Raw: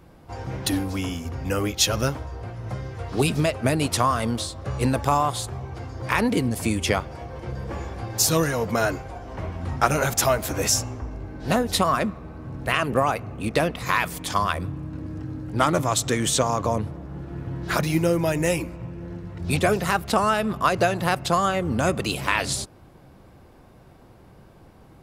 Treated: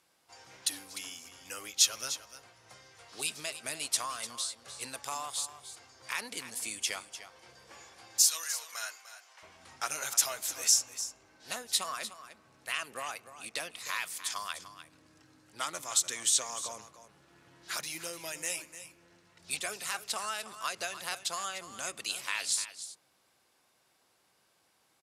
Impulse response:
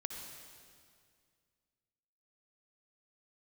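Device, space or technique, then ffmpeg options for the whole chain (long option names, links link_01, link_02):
piezo pickup straight into a mixer: -filter_complex "[0:a]asettb=1/sr,asplit=3[link_01][link_02][link_03];[link_01]atrim=end=8.224[link_04];[link_02]atrim=start=8.22:end=9.43,asetpts=PTS-STARTPTS,afade=type=in:duration=0.004:curve=qsin,afade=type=out:start_time=1.206:duration=0.004:curve=qsin,highpass=970[link_05];[link_03]atrim=start=9.426[link_06];[link_04][link_05]acrossfade=duration=0.004:curve1=hsin:curve2=qsin[link_07];[link_07][link_06]acrossfade=duration=0.004:curve1=qsin:curve2=hsin,lowpass=8900,aderivative,aecho=1:1:299:0.237"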